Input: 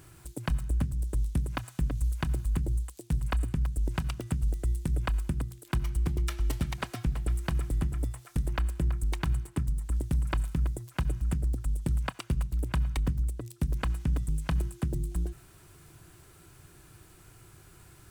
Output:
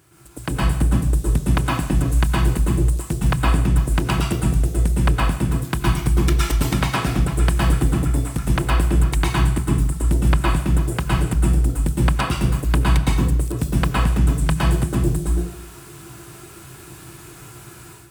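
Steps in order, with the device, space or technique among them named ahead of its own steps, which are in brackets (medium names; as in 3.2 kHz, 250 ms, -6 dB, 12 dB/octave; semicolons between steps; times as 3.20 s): far laptop microphone (reverberation RT60 0.65 s, pre-delay 108 ms, DRR -4.5 dB; high-pass 130 Hz 6 dB/octave; level rider gain up to 11.5 dB); trim -1.5 dB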